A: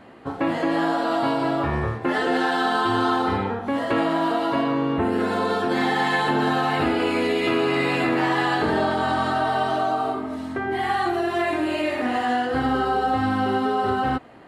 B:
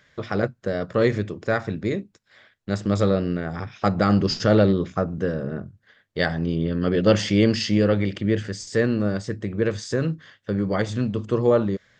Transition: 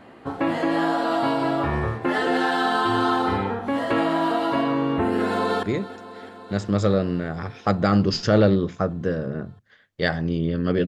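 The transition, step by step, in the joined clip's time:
A
0:05.23–0:05.63: delay throw 330 ms, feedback 80%, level −15 dB
0:05.63: continue with B from 0:01.80

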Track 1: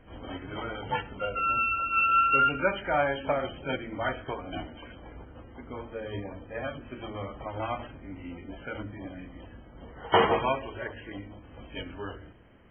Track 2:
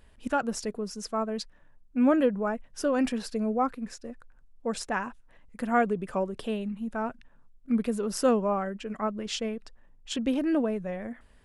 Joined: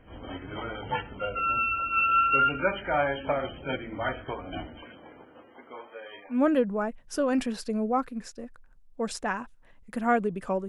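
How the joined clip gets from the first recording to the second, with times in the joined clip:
track 1
0:04.82–0:06.45: high-pass filter 150 Hz → 1,200 Hz
0:06.35: continue with track 2 from 0:02.01, crossfade 0.20 s

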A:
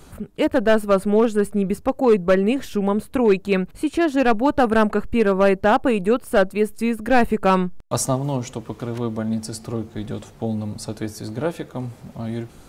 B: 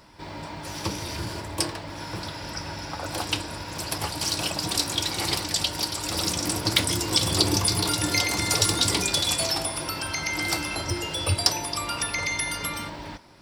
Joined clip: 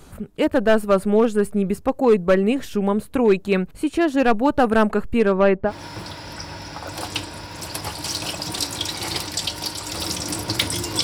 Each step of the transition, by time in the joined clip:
A
0:05.18–0:05.72: low-pass filter 12,000 Hz → 1,200 Hz
0:05.68: continue with B from 0:01.85, crossfade 0.08 s

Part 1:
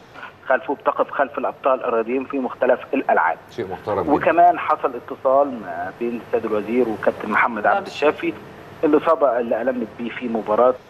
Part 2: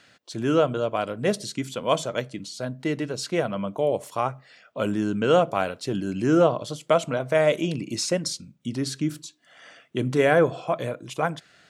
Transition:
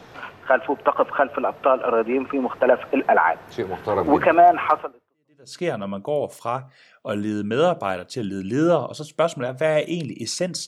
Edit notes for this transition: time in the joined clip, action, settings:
part 1
0:05.17: continue with part 2 from 0:02.88, crossfade 0.80 s exponential

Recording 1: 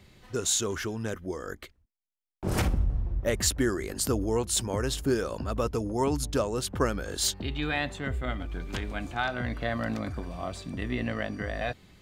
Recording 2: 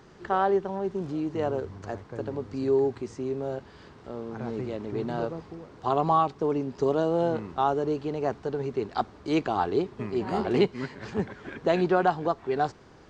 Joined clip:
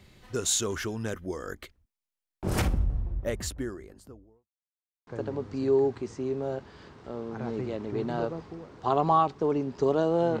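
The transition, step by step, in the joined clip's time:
recording 1
0:02.59–0:04.50: fade out and dull
0:04.50–0:05.07: silence
0:05.07: continue with recording 2 from 0:02.07

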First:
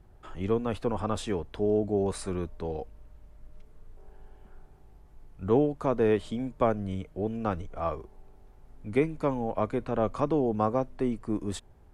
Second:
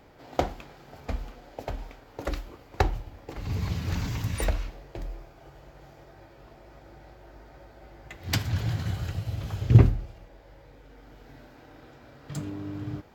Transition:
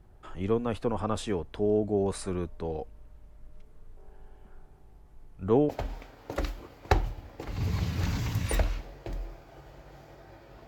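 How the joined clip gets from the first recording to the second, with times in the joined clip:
first
0:05.69: continue with second from 0:01.58

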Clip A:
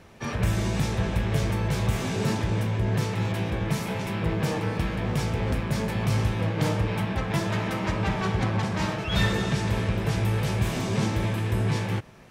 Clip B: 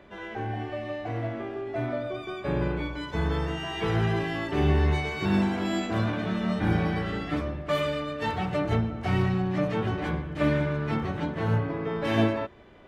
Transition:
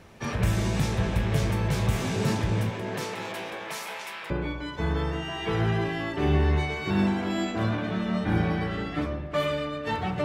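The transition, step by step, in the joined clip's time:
clip A
0:02.69–0:04.30: high-pass filter 210 Hz → 1,200 Hz
0:04.30: continue with clip B from 0:02.65

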